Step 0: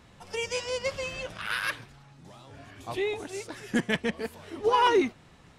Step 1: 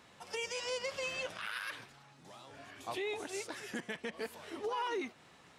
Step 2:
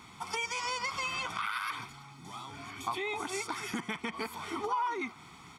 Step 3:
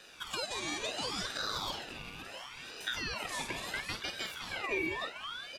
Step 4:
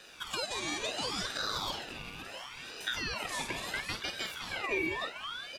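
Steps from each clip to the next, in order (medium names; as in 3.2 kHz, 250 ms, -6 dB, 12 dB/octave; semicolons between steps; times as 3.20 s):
compression 6:1, threshold -28 dBFS, peak gain reduction 9.5 dB; high-pass 430 Hz 6 dB/octave; peak limiter -28 dBFS, peak gain reduction 10 dB; trim -1 dB
comb 0.9 ms, depth 88%; dynamic bell 1.1 kHz, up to +7 dB, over -52 dBFS, Q 0.91; compression 3:1, threshold -39 dBFS, peak gain reduction 11.5 dB; trim +6 dB
doubling 49 ms -9 dB; delay 517 ms -9 dB; ring modulator with a swept carrier 2 kHz, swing 35%, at 0.72 Hz
crackle 230 per s -58 dBFS; trim +1.5 dB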